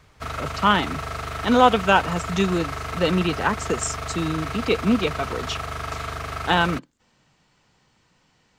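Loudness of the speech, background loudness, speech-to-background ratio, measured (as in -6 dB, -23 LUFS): -22.5 LUFS, -30.5 LUFS, 8.0 dB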